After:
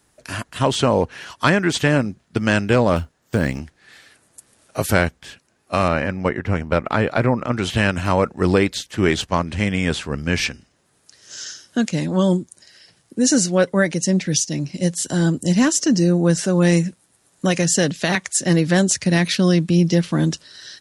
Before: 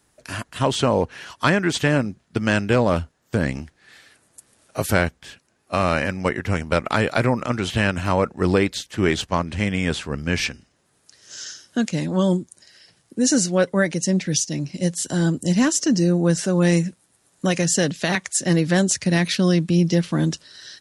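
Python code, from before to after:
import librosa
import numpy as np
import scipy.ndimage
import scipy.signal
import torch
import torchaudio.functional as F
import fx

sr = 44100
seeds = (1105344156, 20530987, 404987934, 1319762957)

y = fx.block_float(x, sr, bits=7, at=(2.96, 3.59))
y = fx.lowpass(y, sr, hz=1900.0, slope=6, at=(5.88, 7.57))
y = F.gain(torch.from_numpy(y), 2.0).numpy()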